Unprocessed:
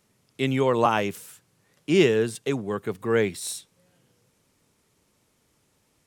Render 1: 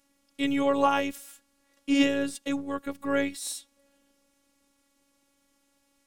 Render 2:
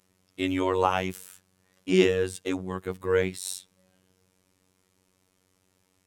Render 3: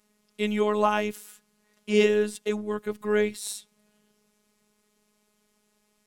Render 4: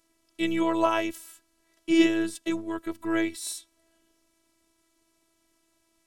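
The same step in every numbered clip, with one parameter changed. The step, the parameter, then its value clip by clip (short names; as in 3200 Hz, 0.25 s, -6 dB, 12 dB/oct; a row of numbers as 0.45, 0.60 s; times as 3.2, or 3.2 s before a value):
robotiser, frequency: 280, 93, 210, 330 Hz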